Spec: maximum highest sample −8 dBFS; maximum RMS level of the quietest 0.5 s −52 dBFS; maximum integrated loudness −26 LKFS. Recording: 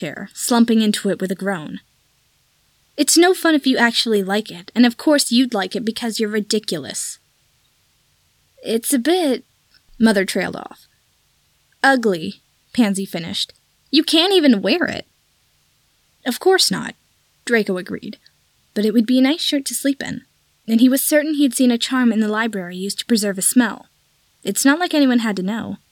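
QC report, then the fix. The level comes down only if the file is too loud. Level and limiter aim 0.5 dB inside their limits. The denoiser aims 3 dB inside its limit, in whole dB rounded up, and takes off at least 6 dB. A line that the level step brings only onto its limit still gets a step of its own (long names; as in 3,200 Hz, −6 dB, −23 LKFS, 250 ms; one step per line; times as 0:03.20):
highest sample −3.5 dBFS: out of spec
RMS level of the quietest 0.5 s −61 dBFS: in spec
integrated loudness −17.5 LKFS: out of spec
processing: level −9 dB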